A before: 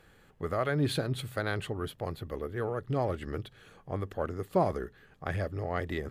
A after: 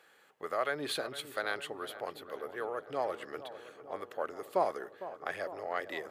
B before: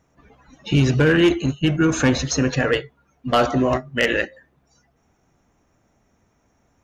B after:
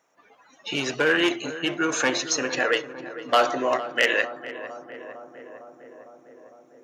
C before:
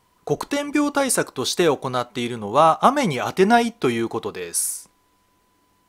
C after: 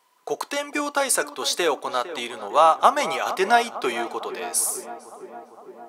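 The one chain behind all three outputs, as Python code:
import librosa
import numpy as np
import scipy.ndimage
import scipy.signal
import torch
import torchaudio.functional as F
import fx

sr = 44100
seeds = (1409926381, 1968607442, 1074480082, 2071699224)

p1 = scipy.signal.sosfilt(scipy.signal.butter(2, 530.0, 'highpass', fs=sr, output='sos'), x)
y = p1 + fx.echo_filtered(p1, sr, ms=455, feedback_pct=76, hz=1600.0, wet_db=-13, dry=0)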